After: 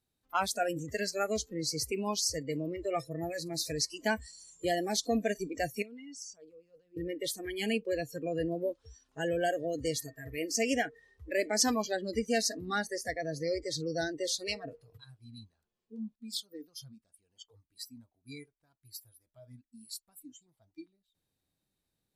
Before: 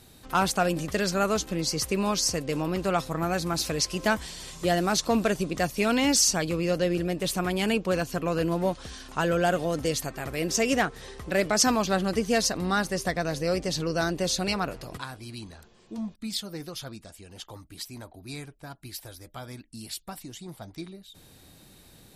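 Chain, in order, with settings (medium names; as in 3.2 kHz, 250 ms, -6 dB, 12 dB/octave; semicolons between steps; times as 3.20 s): 5.82–6.97 s: level held to a coarse grid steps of 20 dB; spectral noise reduction 26 dB; trim -5 dB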